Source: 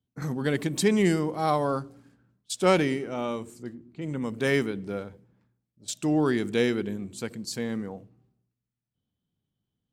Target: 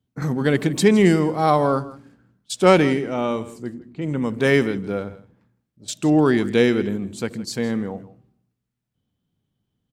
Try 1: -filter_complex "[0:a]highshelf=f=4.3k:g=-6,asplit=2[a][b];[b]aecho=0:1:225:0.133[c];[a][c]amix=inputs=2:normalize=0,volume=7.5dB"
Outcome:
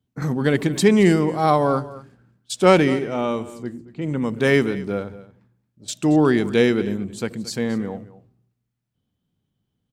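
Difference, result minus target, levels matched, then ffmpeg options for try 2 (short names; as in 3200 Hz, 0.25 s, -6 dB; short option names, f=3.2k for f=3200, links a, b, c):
echo 63 ms late
-filter_complex "[0:a]highshelf=f=4.3k:g=-6,asplit=2[a][b];[b]aecho=0:1:162:0.133[c];[a][c]amix=inputs=2:normalize=0,volume=7.5dB"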